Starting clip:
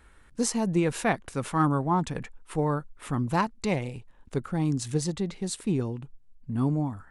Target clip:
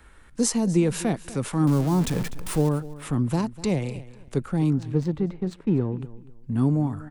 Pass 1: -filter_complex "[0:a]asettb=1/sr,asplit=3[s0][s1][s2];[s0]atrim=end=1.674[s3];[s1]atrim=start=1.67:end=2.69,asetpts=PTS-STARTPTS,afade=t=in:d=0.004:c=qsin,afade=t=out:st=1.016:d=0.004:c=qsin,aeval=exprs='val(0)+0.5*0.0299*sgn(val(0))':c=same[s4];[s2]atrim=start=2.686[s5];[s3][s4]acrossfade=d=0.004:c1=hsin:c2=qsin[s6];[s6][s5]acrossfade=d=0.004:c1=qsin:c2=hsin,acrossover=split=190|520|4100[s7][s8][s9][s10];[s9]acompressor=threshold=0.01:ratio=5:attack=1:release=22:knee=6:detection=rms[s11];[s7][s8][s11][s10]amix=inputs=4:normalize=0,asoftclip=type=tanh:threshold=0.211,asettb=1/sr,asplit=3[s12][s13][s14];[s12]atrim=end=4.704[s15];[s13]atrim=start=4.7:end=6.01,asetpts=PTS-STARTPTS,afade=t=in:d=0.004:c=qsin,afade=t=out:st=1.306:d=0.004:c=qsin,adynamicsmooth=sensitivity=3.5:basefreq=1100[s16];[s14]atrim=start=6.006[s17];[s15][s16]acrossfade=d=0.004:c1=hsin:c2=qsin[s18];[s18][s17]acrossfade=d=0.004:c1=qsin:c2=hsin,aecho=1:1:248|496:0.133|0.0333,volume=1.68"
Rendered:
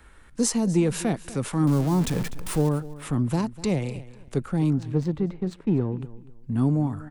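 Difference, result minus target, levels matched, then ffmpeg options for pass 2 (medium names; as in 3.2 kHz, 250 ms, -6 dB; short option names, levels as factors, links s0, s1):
saturation: distortion +22 dB
-filter_complex "[0:a]asettb=1/sr,asplit=3[s0][s1][s2];[s0]atrim=end=1.674[s3];[s1]atrim=start=1.67:end=2.69,asetpts=PTS-STARTPTS,afade=t=in:d=0.004:c=qsin,afade=t=out:st=1.016:d=0.004:c=qsin,aeval=exprs='val(0)+0.5*0.0299*sgn(val(0))':c=same[s4];[s2]atrim=start=2.686[s5];[s3][s4]acrossfade=d=0.004:c1=hsin:c2=qsin[s6];[s6][s5]acrossfade=d=0.004:c1=qsin:c2=hsin,acrossover=split=190|520|4100[s7][s8][s9][s10];[s9]acompressor=threshold=0.01:ratio=5:attack=1:release=22:knee=6:detection=rms[s11];[s7][s8][s11][s10]amix=inputs=4:normalize=0,asoftclip=type=tanh:threshold=0.794,asettb=1/sr,asplit=3[s12][s13][s14];[s12]atrim=end=4.704[s15];[s13]atrim=start=4.7:end=6.01,asetpts=PTS-STARTPTS,afade=t=in:d=0.004:c=qsin,afade=t=out:st=1.306:d=0.004:c=qsin,adynamicsmooth=sensitivity=3.5:basefreq=1100[s16];[s14]atrim=start=6.006[s17];[s15][s16]acrossfade=d=0.004:c1=hsin:c2=qsin[s18];[s18][s17]acrossfade=d=0.004:c1=qsin:c2=hsin,aecho=1:1:248|496:0.133|0.0333,volume=1.68"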